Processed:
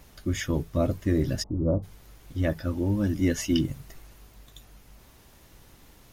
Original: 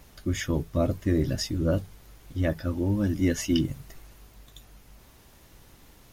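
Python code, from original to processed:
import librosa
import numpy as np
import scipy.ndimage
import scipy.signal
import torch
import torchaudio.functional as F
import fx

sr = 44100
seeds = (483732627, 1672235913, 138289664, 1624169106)

y = fx.steep_lowpass(x, sr, hz=1100.0, slope=48, at=(1.42, 1.82), fade=0.02)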